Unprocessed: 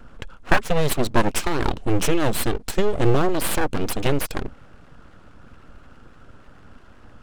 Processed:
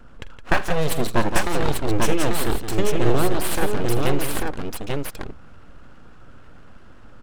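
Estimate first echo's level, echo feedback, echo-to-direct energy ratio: -14.5 dB, no regular repeats, -2.0 dB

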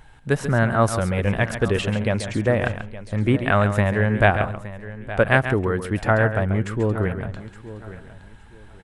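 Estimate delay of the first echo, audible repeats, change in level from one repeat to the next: 137 ms, 4, no regular repeats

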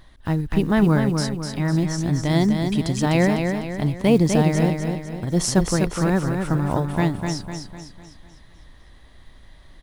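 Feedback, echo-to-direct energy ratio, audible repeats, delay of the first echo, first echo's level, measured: 46%, -4.5 dB, 5, 251 ms, -5.5 dB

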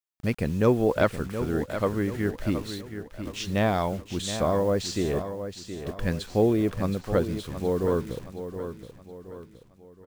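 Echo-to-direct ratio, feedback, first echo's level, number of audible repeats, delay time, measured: -9.0 dB, 42%, -10.0 dB, 4, 721 ms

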